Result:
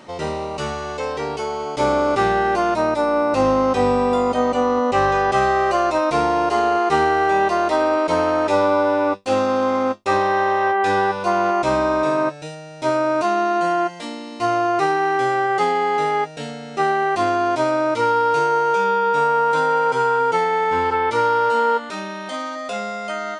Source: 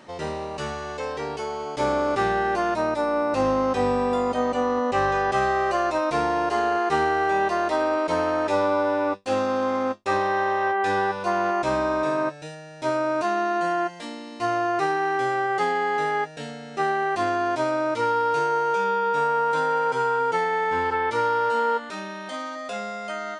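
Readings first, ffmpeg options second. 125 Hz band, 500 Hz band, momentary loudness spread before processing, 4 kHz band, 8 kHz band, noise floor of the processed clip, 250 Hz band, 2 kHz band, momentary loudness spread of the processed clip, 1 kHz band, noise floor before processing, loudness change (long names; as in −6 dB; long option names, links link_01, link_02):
+5.0 dB, +5.0 dB, 9 LU, +5.0 dB, +5.0 dB, −34 dBFS, +5.0 dB, +3.5 dB, 9 LU, +5.0 dB, −38 dBFS, +5.0 dB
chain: -af "bandreject=frequency=1700:width=9.1,volume=5dB"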